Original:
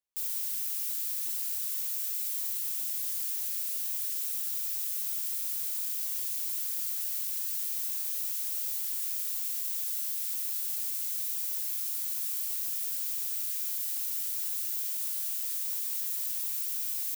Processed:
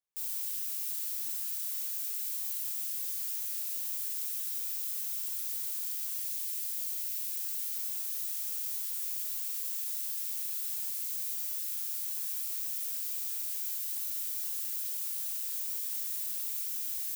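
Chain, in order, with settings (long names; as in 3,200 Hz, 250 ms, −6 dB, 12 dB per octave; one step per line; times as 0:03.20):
0:06.17–0:07.32: inverse Chebyshev high-pass filter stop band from 810 Hz, stop band 40 dB
dense smooth reverb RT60 0.74 s, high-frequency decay 0.9×, DRR 3.5 dB
level −4 dB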